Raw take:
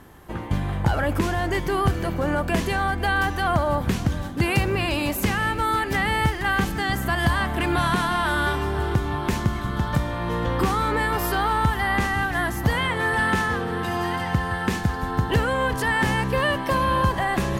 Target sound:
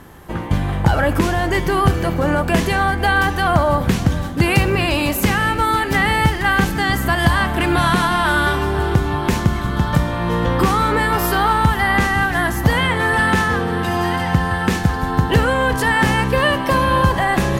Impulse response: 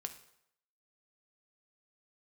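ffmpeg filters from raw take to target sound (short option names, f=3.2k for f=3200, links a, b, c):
-filter_complex "[0:a]asplit=2[a][b];[1:a]atrim=start_sample=2205,asetrate=48510,aresample=44100[c];[b][c]afir=irnorm=-1:irlink=0,volume=4.5dB[d];[a][d]amix=inputs=2:normalize=0"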